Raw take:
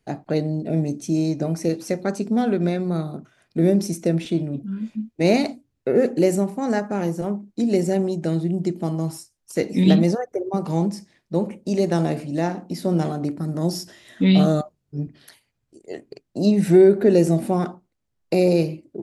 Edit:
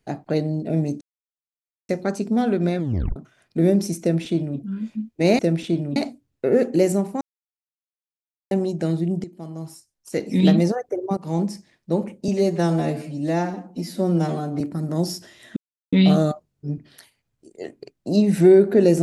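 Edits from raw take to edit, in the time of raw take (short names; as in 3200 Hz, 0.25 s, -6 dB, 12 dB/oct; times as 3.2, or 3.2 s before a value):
1.01–1.89 mute
2.78 tape stop 0.38 s
4.01–4.58 copy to 5.39
6.64–7.94 mute
8.67–10 fade in, from -16 dB
10.6–10.92 fade in equal-power, from -20.5 dB
11.71–13.26 stretch 1.5×
14.22 insert silence 0.36 s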